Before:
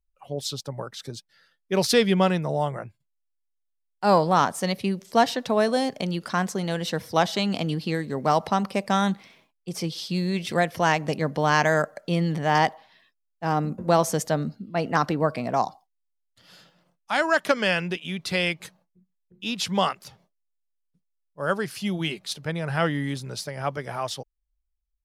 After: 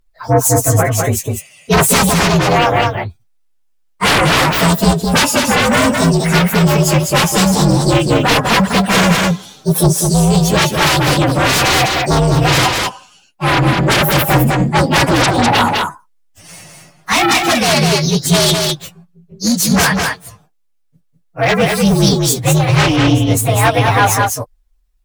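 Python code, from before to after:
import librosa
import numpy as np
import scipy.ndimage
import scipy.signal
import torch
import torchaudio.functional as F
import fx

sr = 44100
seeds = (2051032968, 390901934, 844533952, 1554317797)

y = fx.partial_stretch(x, sr, pct=122)
y = fx.highpass(y, sr, hz=200.0, slope=12, at=(2.09, 2.75))
y = fx.peak_eq(y, sr, hz=950.0, db=fx.line((15.05, 14.0), (15.58, 4.5)), octaves=0.95, at=(15.05, 15.58), fade=0.02)
y = fx.fold_sine(y, sr, drive_db=18, ceiling_db=-6.5)
y = y + 10.0 ** (-4.0 / 20.0) * np.pad(y, (int(203 * sr / 1000.0), 0))[:len(y)]
y = fx.rider(y, sr, range_db=4, speed_s=0.5)
y = fx.high_shelf(y, sr, hz=8600.0, db=-11.0, at=(22.96, 23.37))
y = y * librosa.db_to_amplitude(-1.5)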